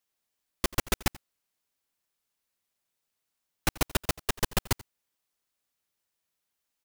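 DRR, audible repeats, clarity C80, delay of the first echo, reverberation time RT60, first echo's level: none, 1, none, 86 ms, none, -21.0 dB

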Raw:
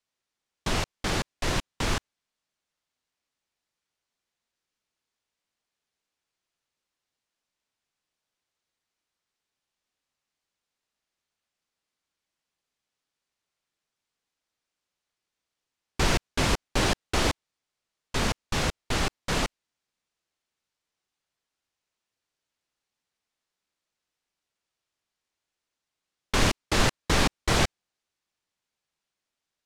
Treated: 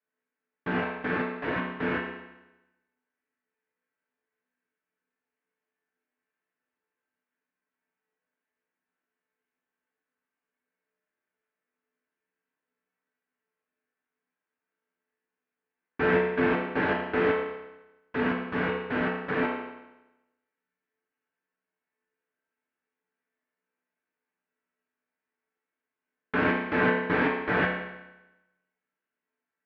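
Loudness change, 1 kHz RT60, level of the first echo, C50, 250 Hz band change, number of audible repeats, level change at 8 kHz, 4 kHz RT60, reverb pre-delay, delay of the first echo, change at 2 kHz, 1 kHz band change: -0.5 dB, 1.0 s, none, 3.0 dB, +3.0 dB, none, under -40 dB, 0.90 s, 5 ms, none, +3.0 dB, 0.0 dB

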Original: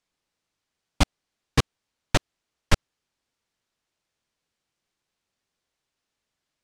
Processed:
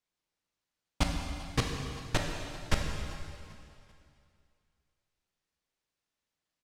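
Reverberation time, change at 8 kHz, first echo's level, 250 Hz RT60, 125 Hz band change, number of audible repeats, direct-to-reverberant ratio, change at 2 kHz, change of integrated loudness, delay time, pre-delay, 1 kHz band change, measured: 2.5 s, -6.0 dB, -19.5 dB, 2.5 s, -6.0 dB, 3, 1.0 dB, -6.0 dB, -7.5 dB, 0.391 s, 6 ms, -6.0 dB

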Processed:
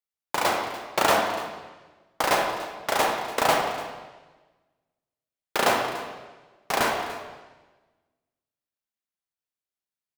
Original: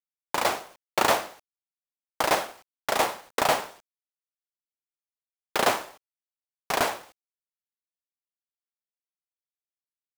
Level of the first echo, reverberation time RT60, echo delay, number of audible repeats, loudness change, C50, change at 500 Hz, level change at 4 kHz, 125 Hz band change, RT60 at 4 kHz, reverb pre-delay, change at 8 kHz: -16.5 dB, 1.3 s, 0.291 s, 1, +1.0 dB, 3.5 dB, +2.0 dB, +1.5 dB, +3.0 dB, 1.2 s, 23 ms, +0.5 dB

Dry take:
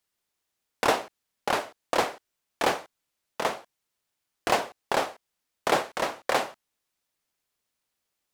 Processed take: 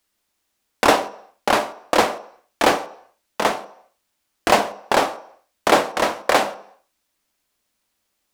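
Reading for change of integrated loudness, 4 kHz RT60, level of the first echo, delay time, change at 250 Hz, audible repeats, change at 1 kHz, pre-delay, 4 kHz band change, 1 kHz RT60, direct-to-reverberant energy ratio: +8.5 dB, 0.70 s, none, none, +10.5 dB, none, +8.5 dB, 3 ms, +8.0 dB, 0.70 s, 11.5 dB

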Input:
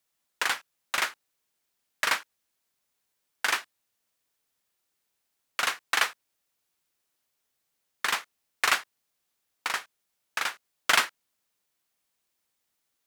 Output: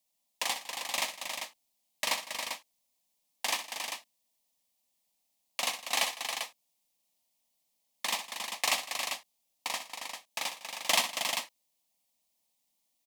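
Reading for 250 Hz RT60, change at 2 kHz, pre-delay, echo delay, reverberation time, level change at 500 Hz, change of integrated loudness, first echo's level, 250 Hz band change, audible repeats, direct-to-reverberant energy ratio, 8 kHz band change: none, -7.0 dB, none, 64 ms, none, +0.5 dB, -4.5 dB, -11.0 dB, -1.0 dB, 4, none, +1.5 dB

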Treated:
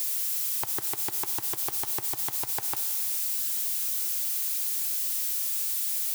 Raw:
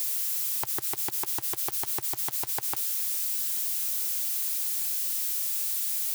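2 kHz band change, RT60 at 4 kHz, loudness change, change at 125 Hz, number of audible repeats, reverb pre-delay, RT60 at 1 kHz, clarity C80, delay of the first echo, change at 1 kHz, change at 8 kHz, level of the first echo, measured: +0.5 dB, 2.3 s, +0.5 dB, +0.5 dB, none, 7 ms, 2.5 s, 13.0 dB, none, 0.0 dB, +0.5 dB, none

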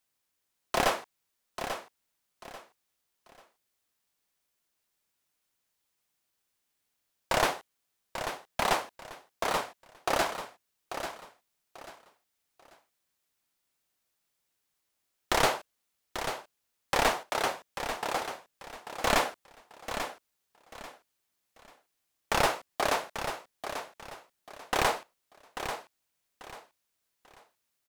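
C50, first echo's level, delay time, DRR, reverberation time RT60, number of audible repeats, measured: none, -9.0 dB, 0.84 s, none, none, 3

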